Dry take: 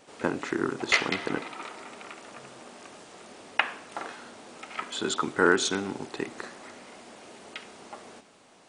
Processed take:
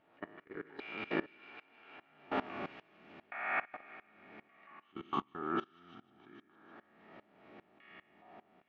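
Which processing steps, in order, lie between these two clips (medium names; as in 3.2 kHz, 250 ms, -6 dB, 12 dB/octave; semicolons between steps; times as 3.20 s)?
spectral sustain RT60 1.20 s; Doppler pass-by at 2.49 s, 45 m/s, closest 5.9 m; low-pass 2.7 kHz 24 dB/octave; de-hum 394 Hz, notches 3; in parallel at +1.5 dB: upward compressor, threshold -53 dBFS; on the sum: comb of notches 510 Hz; level held to a coarse grid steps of 22 dB; on a send: feedback echo behind a high-pass 153 ms, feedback 79%, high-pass 2.1 kHz, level -15 dB; on the sum: sawtooth tremolo in dB swelling 2.5 Hz, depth 21 dB; trim +13.5 dB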